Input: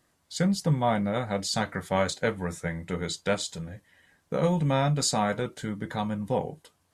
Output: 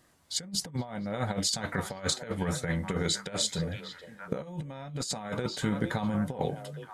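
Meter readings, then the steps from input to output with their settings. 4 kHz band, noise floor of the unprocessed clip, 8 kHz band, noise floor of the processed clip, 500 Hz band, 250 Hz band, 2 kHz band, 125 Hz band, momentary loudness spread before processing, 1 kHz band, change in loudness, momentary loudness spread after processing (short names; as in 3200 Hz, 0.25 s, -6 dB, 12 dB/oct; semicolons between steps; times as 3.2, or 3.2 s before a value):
+1.5 dB, -71 dBFS, +1.0 dB, -51 dBFS, -7.0 dB, -4.0 dB, -3.5 dB, -5.0 dB, 10 LU, -8.0 dB, -4.0 dB, 10 LU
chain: delay with a stepping band-pass 0.46 s, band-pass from 3300 Hz, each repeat -1.4 oct, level -12 dB; negative-ratio compressor -31 dBFS, ratio -0.5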